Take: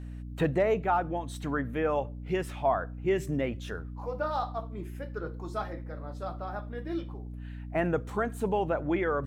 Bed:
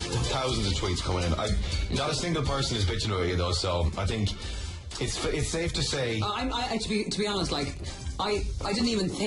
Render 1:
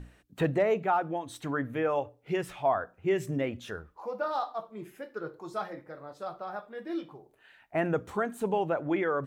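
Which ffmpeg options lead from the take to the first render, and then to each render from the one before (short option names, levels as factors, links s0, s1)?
-af "bandreject=f=60:t=h:w=6,bandreject=f=120:t=h:w=6,bandreject=f=180:t=h:w=6,bandreject=f=240:t=h:w=6,bandreject=f=300:t=h:w=6"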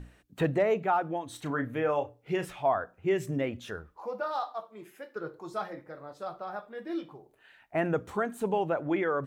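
-filter_complex "[0:a]asettb=1/sr,asplit=3[s0][s1][s2];[s0]atrim=end=1.294[s3];[s1]atrim=start=1.29:end=2.5,asetpts=PTS-STARTPTS,afade=t=in:d=0.004:c=qsin,afade=t=out:st=1.206:d=0.004:c=qsin,asplit=2[s4][s5];[s5]adelay=33,volume=0.316[s6];[s4][s6]amix=inputs=2:normalize=0,atrim=end_sample=53361[s7];[s2]atrim=start=2.496[s8];[s3][s7]acrossfade=d=0.004:c1=hsin:c2=qsin[s9];[s9][s8]acrossfade=d=0.004:c1=qsin:c2=hsin,asettb=1/sr,asplit=3[s10][s11][s12];[s10]atrim=end=4.204[s13];[s11]atrim=start=4.2:end=5.16,asetpts=PTS-STARTPTS,afade=t=in:d=0.004:c=qsin,afade=t=out:st=0.956:d=0.004:c=qsin,highpass=f=460:p=1[s14];[s12]atrim=start=5.156[s15];[s13][s14]acrossfade=d=0.004:c1=hsin:c2=qsin[s16];[s16][s15]acrossfade=d=0.004:c1=qsin:c2=hsin"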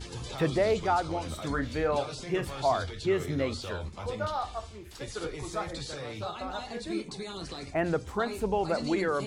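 -filter_complex "[1:a]volume=0.282[s0];[0:a][s0]amix=inputs=2:normalize=0"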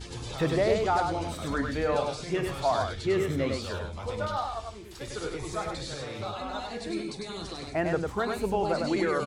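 -af "aecho=1:1:100:0.631"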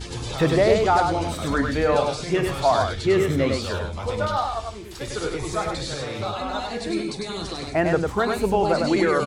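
-af "volume=2.24"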